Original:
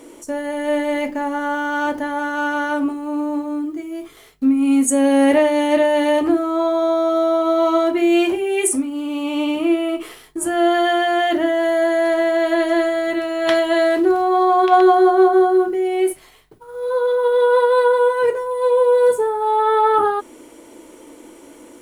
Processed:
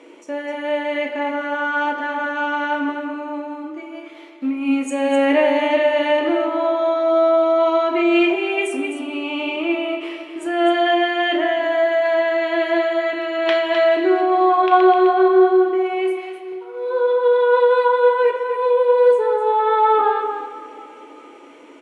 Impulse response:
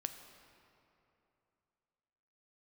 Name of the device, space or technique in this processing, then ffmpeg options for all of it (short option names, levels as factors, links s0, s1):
station announcement: -filter_complex "[0:a]highpass=310,lowpass=3900,equalizer=f=2500:t=o:w=0.5:g=7.5,aecho=1:1:34.99|256.6:0.282|0.398[s0];[1:a]atrim=start_sample=2205[s1];[s0][s1]afir=irnorm=-1:irlink=0"